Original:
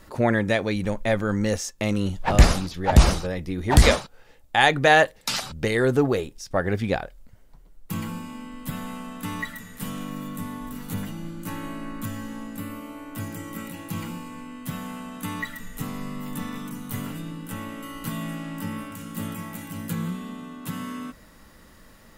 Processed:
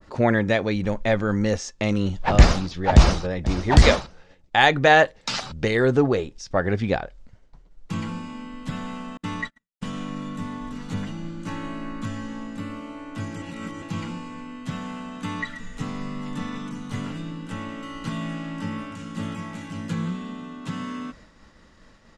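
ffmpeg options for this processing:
-filter_complex "[0:a]asplit=2[s0][s1];[s1]afade=t=in:st=2.94:d=0.01,afade=t=out:st=3.49:d=0.01,aecho=0:1:500|1000:0.223872|0.0335808[s2];[s0][s2]amix=inputs=2:normalize=0,asettb=1/sr,asplit=3[s3][s4][s5];[s3]atrim=end=9.174[s6];[s4]atrim=start=9.17:end=9.93,asetpts=PTS-STARTPTS,afade=t=in:d=0.004:c=qsin,afade=t=out:st=0.756:d=0.004:c=qsin,agate=range=0.00794:threshold=0.02:ratio=16:release=100:detection=peak[s7];[s5]atrim=start=9.926[s8];[s6][s7]acrossfade=d=0.004:c1=hsin:c2=qsin[s9];[s9][s8]acrossfade=d=0.004:c1=qsin:c2=hsin,asplit=3[s10][s11][s12];[s10]atrim=end=13.422[s13];[s11]atrim=start=13.418:end=13.822,asetpts=PTS-STARTPTS,areverse[s14];[s12]atrim=start=13.818[s15];[s13][s14]acrossfade=d=0.004:c1=hsin:c2=hsin[s16];[s16][s15]acrossfade=d=0.004:c1=hsin:c2=hsin,agate=range=0.0224:threshold=0.00501:ratio=3:detection=peak,lowpass=f=6700:w=0.5412,lowpass=f=6700:w=1.3066,adynamicequalizer=threshold=0.0158:dfrequency=1800:dqfactor=0.7:tfrequency=1800:tqfactor=0.7:attack=5:release=100:ratio=0.375:range=1.5:mode=cutabove:tftype=highshelf,volume=1.19"

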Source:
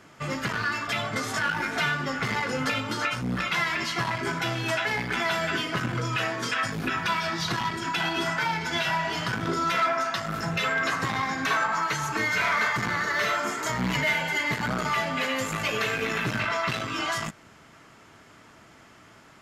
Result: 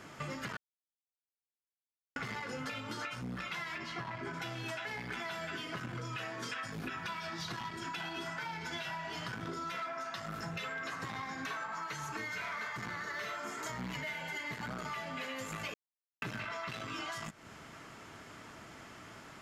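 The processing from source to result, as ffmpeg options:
-filter_complex "[0:a]asettb=1/sr,asplit=3[s0][s1][s2];[s0]atrim=end=3.784[s3];[s1]atrim=start=3.78:end=4.34,asetpts=PTS-STARTPTS,afade=t=in:d=0.004:c=qsin,afade=t=out:st=0.556:d=0.004:c=qsin,lowpass=f=2300:p=1[s4];[s2]atrim=start=4.336[s5];[s3][s4]acrossfade=d=0.004:c1=hsin:c2=qsin[s6];[s6][s5]acrossfade=d=0.004:c1=qsin:c2=hsin,asplit=5[s7][s8][s9][s10][s11];[s7]atrim=end=0.57,asetpts=PTS-STARTPTS,afade=t=out:st=0.566:d=0.004:c=hsin[s12];[s8]atrim=start=0.57:end=2.16,asetpts=PTS-STARTPTS,volume=0[s13];[s9]atrim=start=2.16:end=15.74,asetpts=PTS-STARTPTS,afade=t=in:d=0.004:c=hsin,afade=t=out:st=13.576:d=0.004:c=hsin[s14];[s10]atrim=start=15.74:end=16.22,asetpts=PTS-STARTPTS,volume=0[s15];[s11]atrim=start=16.22,asetpts=PTS-STARTPTS,afade=t=in:d=0.004:c=hsin[s16];[s12][s13][s14][s15][s16]concat=n=5:v=0:a=1,acompressor=threshold=0.01:ratio=6,volume=1.12"

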